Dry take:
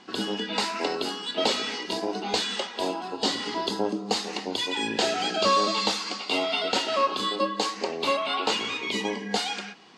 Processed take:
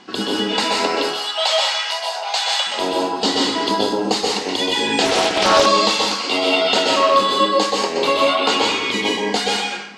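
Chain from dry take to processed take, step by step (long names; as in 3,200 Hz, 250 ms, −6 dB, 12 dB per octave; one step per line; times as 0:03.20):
0:00.95–0:02.67: Butterworth high-pass 620 Hz 48 dB per octave
dense smooth reverb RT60 0.55 s, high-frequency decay 0.8×, pre-delay 115 ms, DRR −1 dB
0:05.05–0:05.66: highs frequency-modulated by the lows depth 0.49 ms
level +6 dB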